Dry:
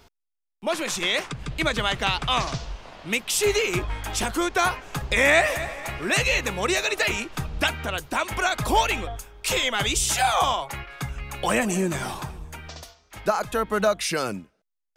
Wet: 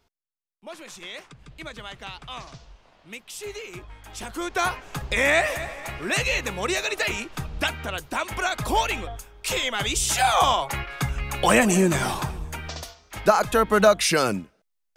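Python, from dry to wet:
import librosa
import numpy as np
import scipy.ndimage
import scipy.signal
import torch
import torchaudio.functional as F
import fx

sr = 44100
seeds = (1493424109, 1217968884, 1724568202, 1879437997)

y = fx.gain(x, sr, db=fx.line((4.01, -14.0), (4.61, -2.0), (9.83, -2.0), (10.77, 5.0)))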